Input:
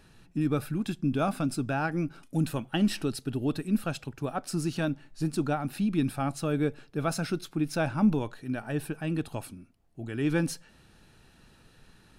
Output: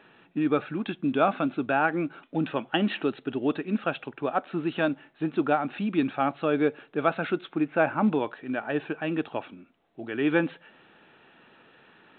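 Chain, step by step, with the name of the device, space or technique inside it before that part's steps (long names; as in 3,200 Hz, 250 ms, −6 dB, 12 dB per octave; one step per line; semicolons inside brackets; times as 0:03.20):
0:07.56–0:08.08: low-pass filter 2,600 Hz 24 dB per octave
telephone (band-pass filter 330–3,500 Hz; level +7 dB; mu-law 64 kbit/s 8,000 Hz)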